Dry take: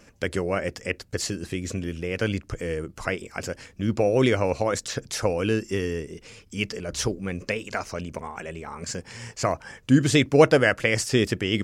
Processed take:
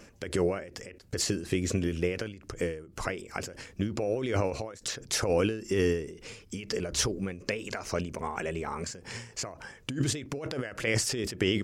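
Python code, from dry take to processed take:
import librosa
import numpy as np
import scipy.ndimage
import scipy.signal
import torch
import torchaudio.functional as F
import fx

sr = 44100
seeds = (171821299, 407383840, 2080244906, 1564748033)

y = fx.peak_eq(x, sr, hz=380.0, db=3.5, octaves=0.55)
y = fx.over_compress(y, sr, threshold_db=-25.0, ratio=-1.0)
y = fx.end_taper(y, sr, db_per_s=100.0)
y = y * 10.0 ** (-1.5 / 20.0)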